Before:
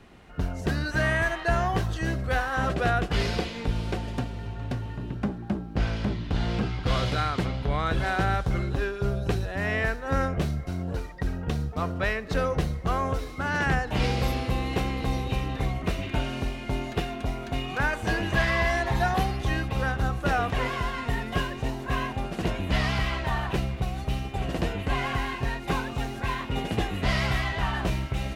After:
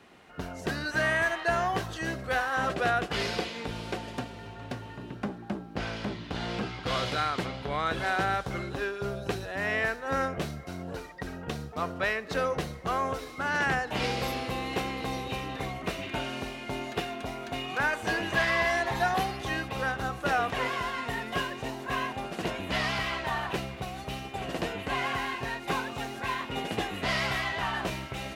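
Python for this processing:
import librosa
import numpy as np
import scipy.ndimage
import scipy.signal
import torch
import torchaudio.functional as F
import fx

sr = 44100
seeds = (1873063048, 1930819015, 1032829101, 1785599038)

y = fx.highpass(x, sr, hz=350.0, slope=6)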